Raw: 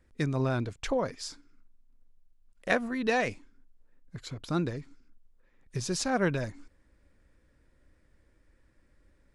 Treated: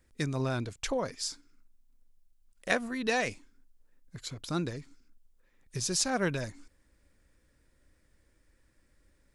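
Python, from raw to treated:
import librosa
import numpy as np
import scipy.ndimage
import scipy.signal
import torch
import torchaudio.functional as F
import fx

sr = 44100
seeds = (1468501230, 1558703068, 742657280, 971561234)

y = fx.high_shelf(x, sr, hz=3800.0, db=11.0)
y = F.gain(torch.from_numpy(y), -3.0).numpy()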